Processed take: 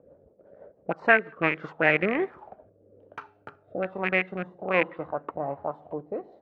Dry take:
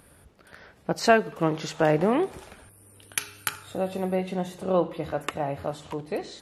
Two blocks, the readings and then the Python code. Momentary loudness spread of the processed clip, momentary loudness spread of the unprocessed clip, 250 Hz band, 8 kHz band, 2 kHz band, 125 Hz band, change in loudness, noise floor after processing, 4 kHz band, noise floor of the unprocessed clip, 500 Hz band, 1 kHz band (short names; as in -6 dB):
18 LU, 12 LU, -4.5 dB, under -35 dB, +7.0 dB, -6.5 dB, +0.5 dB, -62 dBFS, -6.5 dB, -56 dBFS, -3.0 dB, -2.0 dB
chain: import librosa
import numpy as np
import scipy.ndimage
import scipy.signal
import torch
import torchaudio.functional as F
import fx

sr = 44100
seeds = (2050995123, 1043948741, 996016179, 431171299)

y = fx.rattle_buzz(x, sr, strikes_db=-28.0, level_db=-17.0)
y = fx.highpass(y, sr, hz=190.0, slope=6)
y = fx.transient(y, sr, attack_db=-2, sustain_db=-6)
y = fx.rotary_switch(y, sr, hz=6.0, then_hz=1.2, switch_at_s=1.35)
y = fx.envelope_lowpass(y, sr, base_hz=530.0, top_hz=2000.0, q=4.5, full_db=-24.5, direction='up')